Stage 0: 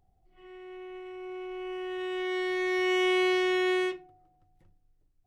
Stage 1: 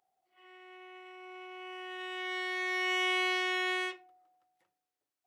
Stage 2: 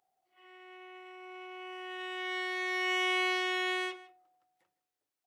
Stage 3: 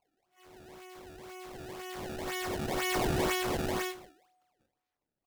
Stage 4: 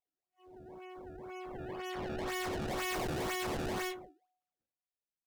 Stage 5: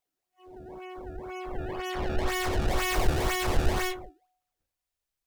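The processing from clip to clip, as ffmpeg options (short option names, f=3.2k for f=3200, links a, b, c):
-af "highpass=720"
-filter_complex "[0:a]asplit=2[a][b];[b]adelay=157.4,volume=-18dB,highshelf=f=4k:g=-3.54[c];[a][c]amix=inputs=2:normalize=0"
-filter_complex "[0:a]acrusher=samples=24:mix=1:aa=0.000001:lfo=1:lforange=38.4:lforate=2,asplit=2[a][b];[b]adelay=22,volume=-11dB[c];[a][c]amix=inputs=2:normalize=0"
-af "afftdn=nr=22:nf=-50,asoftclip=type=hard:threshold=-36.5dB,volume=2dB"
-af "asubboost=boost=8:cutoff=70,volume=7.5dB"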